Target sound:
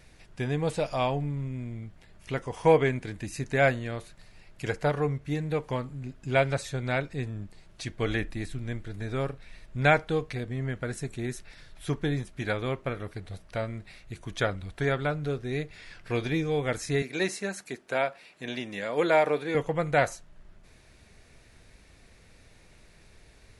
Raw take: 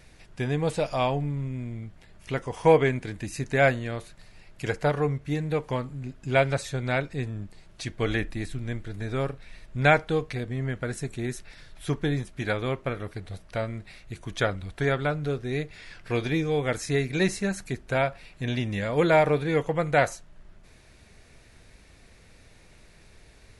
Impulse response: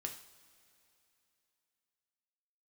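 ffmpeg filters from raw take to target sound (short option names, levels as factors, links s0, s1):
-filter_complex "[0:a]asettb=1/sr,asplit=3[s0][s1][s2];[s0]atrim=end=17.024[s3];[s1]atrim=start=17.02:end=19.55,asetpts=PTS-STARTPTS,afade=t=in:d=0.004:c=qsin,afade=t=out:st=2.526:d=0.004:c=qsin,highpass=280[s4];[s2]atrim=start=19.546[s5];[s3][s4]acrossfade=d=0.004:c1=hsin:c2=qsin[s6];[s6][s5]acrossfade=d=0.004:c1=qsin:c2=hsin,volume=0.794"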